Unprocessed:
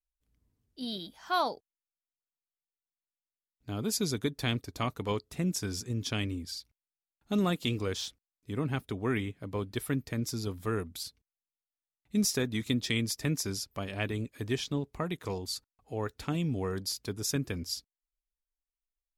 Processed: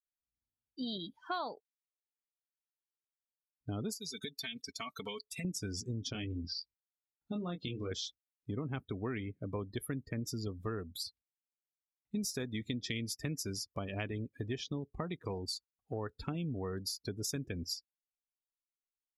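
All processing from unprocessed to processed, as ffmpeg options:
-filter_complex "[0:a]asettb=1/sr,asplit=3[a][b][c];[a]atrim=end=3.934[d];[b]atrim=start=3.93:end=5.45,asetpts=PTS-STARTPTS,afade=t=in:d=0.004:c=qsin,afade=t=out:st=1.516:d=0.004:c=qsin,tiltshelf=f=1.2k:g=-9,aecho=1:1:4.5:0.72,atrim=end_sample=67032,acompressor=threshold=-38dB:ratio=6:attack=3.2:release=140:knee=1:detection=peak[e];[c]atrim=start=5.446[f];[d][e]acrossfade=d=0.004:c1=hsin:c2=qsin[g];[g][f]acrossfade=d=0.004:c1=qsin:c2=hsin,asettb=1/sr,asplit=3[h][i][j];[h]atrim=end=6.124[k];[i]atrim=start=6.12:end=7.91,asetpts=PTS-STARTPTS,afade=t=in:d=0.004:c=qsin,afade=t=out:st=1.786:d=0.004:c=qsin,lowpass=f=6k:w=0.5412,lowpass=f=6k:w=1.3066,acompressor=threshold=-36dB:ratio=2.5:attack=3.2:release=140:knee=1:detection=peak,asplit=2[l][m];[m]adelay=23,volume=-5dB[n];[l][n]amix=inputs=2:normalize=0,atrim=end_sample=78939[o];[j]atrim=start=7.906[p];[k][o]acrossfade=d=0.004:c1=hsin:c2=qsin[q];[q][p]acrossfade=d=0.004:c1=qsin:c2=hsin,afftdn=nr=28:nf=-42,highshelf=f=11k:g=3,acompressor=threshold=-40dB:ratio=4,volume=3.5dB"

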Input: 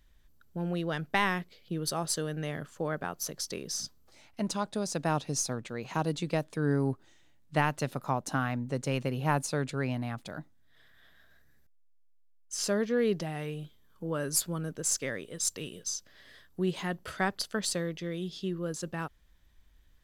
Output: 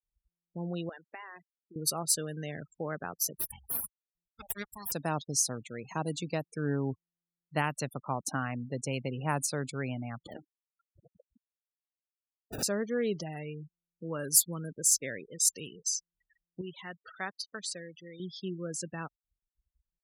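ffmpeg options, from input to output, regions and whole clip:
-filter_complex "[0:a]asettb=1/sr,asplit=3[a][b][c];[a]atrim=end=0.894[d];[b]atrim=start=0.89:end=1.76,asetpts=PTS-STARTPTS,afade=t=in:d=0.004:c=qsin,afade=t=out:st=0.866:d=0.004:c=qsin,highshelf=f=3.3k:g=-5,acompressor=threshold=-35dB:ratio=12:attack=3.2:release=140:knee=1:detection=peak,highpass=430,lowpass=6.3k[e];[c]atrim=start=1.756[f];[d][e]acrossfade=d=0.004:c1=hsin:c2=qsin[g];[g][f]acrossfade=d=0.004:c1=qsin:c2=hsin,asettb=1/sr,asplit=3[h][i][j];[h]atrim=end=3.354[k];[i]atrim=start=3.35:end=4.92,asetpts=PTS-STARTPTS,afade=t=in:d=0.004:c=qsin,afade=t=out:st=1.566:d=0.004:c=qsin,highpass=540,aeval=exprs='abs(val(0))':c=same[l];[j]atrim=start=4.916[m];[k][l]acrossfade=d=0.004:c1=hsin:c2=qsin[n];[n][m]acrossfade=d=0.004:c1=qsin:c2=hsin,asettb=1/sr,asplit=3[o][p][q];[o]atrim=end=10.264[r];[p]atrim=start=10.26:end=12.63,asetpts=PTS-STARTPTS,afade=t=in:d=0.004:c=qsin,afade=t=out:st=2.366:d=0.004:c=qsin,aeval=exprs='val(0)+0.5*0.00668*sgn(val(0))':c=same,highpass=360,acrusher=samples=28:mix=1:aa=0.000001:lfo=1:lforange=28:lforate=1.4[s];[q]atrim=start=12.626[t];[r][s]acrossfade=d=0.004:c1=hsin:c2=qsin[u];[u][t]acrossfade=d=0.004:c1=qsin:c2=hsin,asettb=1/sr,asplit=3[v][w][x];[v]atrim=end=16.614[y];[w]atrim=start=16.61:end=18.2,asetpts=PTS-STARTPTS,afade=t=in:d=0.004:c=qsin,afade=t=out:st=1.586:d=0.004:c=qsin,highpass=f=1.3k:p=1,aemphasis=mode=reproduction:type=bsi[z];[x]atrim=start=18.196[aa];[y][z]acrossfade=d=0.004:c1=hsin:c2=qsin[ab];[ab][aa]acrossfade=d=0.004:c1=qsin:c2=hsin,aemphasis=mode=production:type=50kf,afftfilt=real='re*gte(hypot(re,im),0.0158)':imag='im*gte(hypot(re,im),0.0158)':win_size=1024:overlap=0.75,highpass=54,volume=-3.5dB"

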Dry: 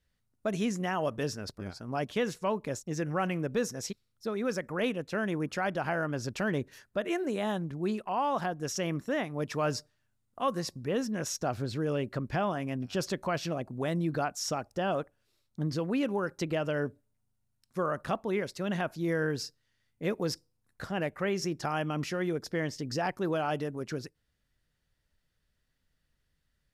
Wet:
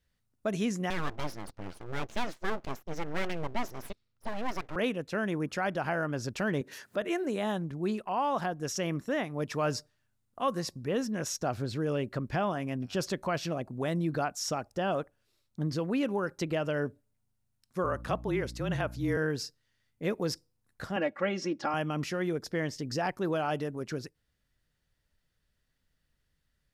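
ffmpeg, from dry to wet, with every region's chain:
-filter_complex "[0:a]asettb=1/sr,asplit=3[a][b][c];[a]atrim=end=0.904[d];[b]atrim=start=0.9:end=4.76,asetpts=PTS-STARTPTS,afade=t=in:d=0.004:c=qsin,afade=t=out:st=3.856:d=0.004:c=qsin,lowpass=4.5k,aeval=exprs='abs(val(0))':c=same[e];[c]atrim=start=4.756[f];[d][e]acrossfade=d=0.004:c1=hsin:c2=qsin[g];[g][f]acrossfade=d=0.004:c1=qsin:c2=hsin,asettb=1/sr,asplit=3[h][i][j];[h]atrim=end=6.614[k];[i]atrim=start=6.61:end=7.02,asetpts=PTS-STARTPTS,afade=t=in:d=0.004:c=qsin,afade=t=out:st=0.406:d=0.004:c=qsin,highpass=190,acompressor=mode=upward:threshold=-36dB:ratio=2.5:attack=3.2:release=140:knee=2.83:detection=peak[l];[j]atrim=start=7.016[m];[k][l]acrossfade=d=0.004:c1=hsin:c2=qsin[n];[n][m]acrossfade=d=0.004:c1=qsin:c2=hsin,asettb=1/sr,asplit=3[o][p][q];[o]atrim=end=17.844[r];[p]atrim=start=17.84:end=19.17,asetpts=PTS-STARTPTS,afade=t=in:d=0.004:c=qsin,afade=t=out:st=1.326:d=0.004:c=qsin,afreqshift=-32,aeval=exprs='val(0)+0.00708*(sin(2*PI*60*n/s)+sin(2*PI*2*60*n/s)/2+sin(2*PI*3*60*n/s)/3+sin(2*PI*4*60*n/s)/4+sin(2*PI*5*60*n/s)/5)':c=same[s];[q]atrim=start=19.166[t];[r][s]acrossfade=d=0.004:c1=hsin:c2=qsin[u];[u][t]acrossfade=d=0.004:c1=qsin:c2=hsin,asettb=1/sr,asplit=3[v][w][x];[v]atrim=end=20.964[y];[w]atrim=start=20.96:end=21.74,asetpts=PTS-STARTPTS,afade=t=in:d=0.004:c=qsin,afade=t=out:st=0.776:d=0.004:c=qsin,highpass=150,lowpass=4.4k,aecho=1:1:3.6:0.78,atrim=end_sample=34398[z];[x]atrim=start=21.736[aa];[y][z]acrossfade=d=0.004:c1=hsin:c2=qsin[ab];[ab][aa]acrossfade=d=0.004:c1=qsin:c2=hsin"

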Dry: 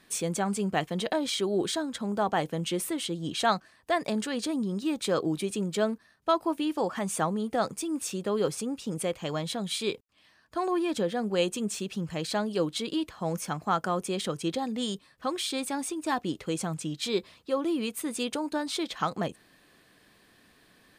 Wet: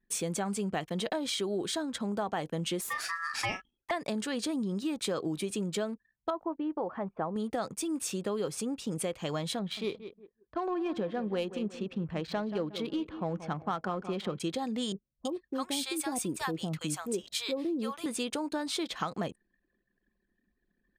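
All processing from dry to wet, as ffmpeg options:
-filter_complex "[0:a]asettb=1/sr,asplit=3[a][b][c];[a]atrim=end=2.814[d];[b]atrim=start=2.81:end=3.91,asetpts=PTS-STARTPTS,afade=t=in:d=0.004:c=qsin,afade=t=out:st=1.096:d=0.004:c=qsin,aeval=exprs='val(0)*sin(2*PI*1500*n/s)':c=same,asplit=2[e][f];[f]adelay=36,volume=-8dB[g];[e][g]amix=inputs=2:normalize=0,atrim=end_sample=48510[h];[c]atrim=start=3.906[i];[d][h]acrossfade=d=0.004:c1=hsin:c2=qsin[j];[j][i]acrossfade=d=0.004:c1=qsin:c2=hsin,asettb=1/sr,asplit=3[k][l][m];[k]atrim=end=6.304[n];[l]atrim=start=6.3:end=7.36,asetpts=PTS-STARTPTS,afade=t=in:d=0.004:c=qsin,afade=t=out:st=1.056:d=0.004:c=qsin,lowpass=1.1k,equalizer=f=180:t=o:w=1.7:g=-5[o];[m]atrim=start=7.356[p];[n][o]acrossfade=d=0.004:c1=hsin:c2=qsin[q];[q][p]acrossfade=d=0.004:c1=qsin:c2=hsin,asettb=1/sr,asplit=3[r][s][t];[r]atrim=end=9.594[u];[s]atrim=start=9.59:end=14.4,asetpts=PTS-STARTPTS,afade=t=in:d=0.004:c=qsin,afade=t=out:st=4.806:d=0.004:c=qsin,adynamicsmooth=sensitivity=2:basefreq=2.1k,asplit=2[v][w];[w]adelay=180,lowpass=f=4.4k:p=1,volume=-14dB,asplit=2[x][y];[y]adelay=180,lowpass=f=4.4k:p=1,volume=0.36,asplit=2[z][aa];[aa]adelay=180,lowpass=f=4.4k:p=1,volume=0.36[ab];[v][x][z][ab]amix=inputs=4:normalize=0,atrim=end_sample=212121[ac];[t]atrim=start=14.396[ad];[u][ac]acrossfade=d=0.004:c1=hsin:c2=qsin[ae];[ae][ad]acrossfade=d=0.004:c1=qsin:c2=hsin,asettb=1/sr,asplit=3[af][ag][ah];[af]atrim=end=14.924[ai];[ag]atrim=start=14.92:end=18.06,asetpts=PTS-STARTPTS,afade=t=in:d=0.004:c=qsin,afade=t=out:st=3.136:d=0.004:c=qsin,highshelf=f=12k:g=11.5,acrossover=split=760[aj][ak];[ak]adelay=330[al];[aj][al]amix=inputs=2:normalize=0,atrim=end_sample=138474[am];[ah]atrim=start=18.056[an];[ai][am]acrossfade=d=0.004:c1=hsin:c2=qsin[ao];[ao][an]acrossfade=d=0.004:c1=qsin:c2=hsin,anlmdn=0.00251,acompressor=threshold=-29dB:ratio=6"

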